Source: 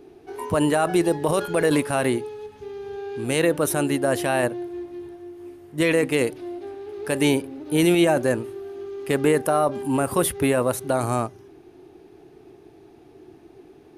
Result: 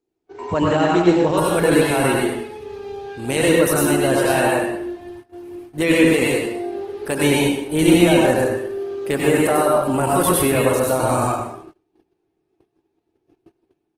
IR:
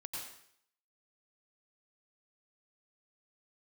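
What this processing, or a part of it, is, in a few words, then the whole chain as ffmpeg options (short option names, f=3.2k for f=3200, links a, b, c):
speakerphone in a meeting room: -filter_complex "[1:a]atrim=start_sample=2205[a];[0:a][a]afir=irnorm=-1:irlink=0,asplit=2[b][c];[c]adelay=120,highpass=300,lowpass=3.4k,asoftclip=type=hard:threshold=-16.5dB,volume=-11dB[d];[b][d]amix=inputs=2:normalize=0,dynaudnorm=f=110:g=7:m=4.5dB,agate=range=-28dB:threshold=-40dB:ratio=16:detection=peak,volume=2.5dB" -ar 48000 -c:a libopus -b:a 16k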